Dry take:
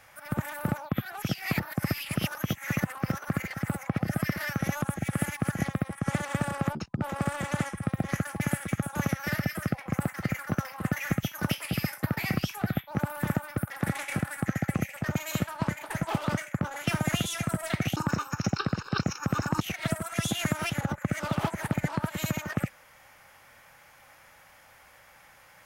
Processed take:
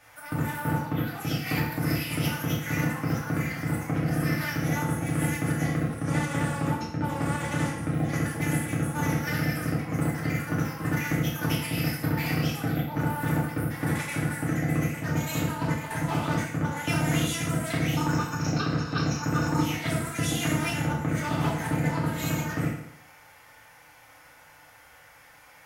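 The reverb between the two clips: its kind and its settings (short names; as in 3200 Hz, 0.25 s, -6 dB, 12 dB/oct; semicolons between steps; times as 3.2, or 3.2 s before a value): FDN reverb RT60 0.75 s, low-frequency decay 0.85×, high-frequency decay 0.9×, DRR -6 dB; gain -4.5 dB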